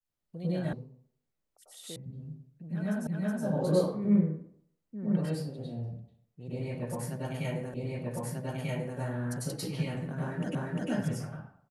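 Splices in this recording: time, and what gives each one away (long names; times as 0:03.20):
0:00.73: cut off before it has died away
0:01.96: cut off before it has died away
0:03.07: the same again, the last 0.37 s
0:07.74: the same again, the last 1.24 s
0:10.55: the same again, the last 0.35 s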